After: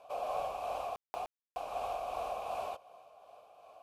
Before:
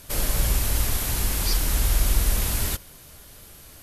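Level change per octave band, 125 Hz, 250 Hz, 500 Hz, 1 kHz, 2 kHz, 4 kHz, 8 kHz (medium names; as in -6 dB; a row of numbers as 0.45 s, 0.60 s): -36.0 dB, -25.0 dB, -1.0 dB, +1.5 dB, -17.5 dB, -23.0 dB, -33.0 dB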